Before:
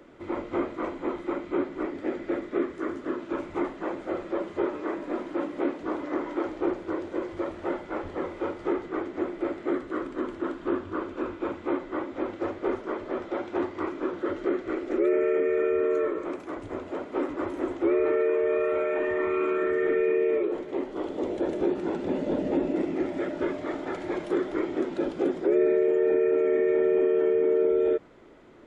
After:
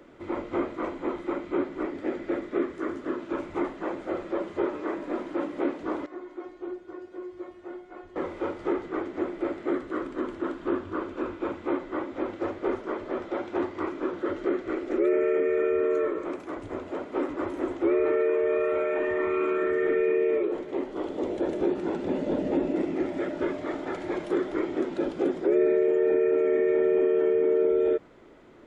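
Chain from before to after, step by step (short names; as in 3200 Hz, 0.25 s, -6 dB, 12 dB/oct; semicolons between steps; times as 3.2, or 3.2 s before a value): 6.06–8.16 resonator 360 Hz, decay 0.2 s, harmonics all, mix 90%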